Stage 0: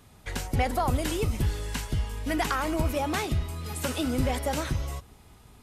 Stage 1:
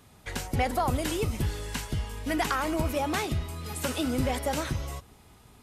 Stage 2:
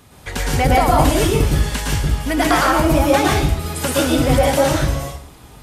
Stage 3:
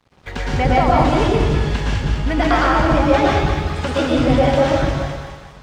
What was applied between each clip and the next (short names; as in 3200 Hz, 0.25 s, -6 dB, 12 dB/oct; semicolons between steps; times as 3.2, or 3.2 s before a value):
low shelf 63 Hz -7 dB
plate-style reverb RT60 0.53 s, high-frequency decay 0.85×, pre-delay 0.1 s, DRR -3.5 dB; gain +8 dB
Gaussian blur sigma 1.7 samples; split-band echo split 830 Hz, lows 0.135 s, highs 0.206 s, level -5.5 dB; crossover distortion -46.5 dBFS; gain -1 dB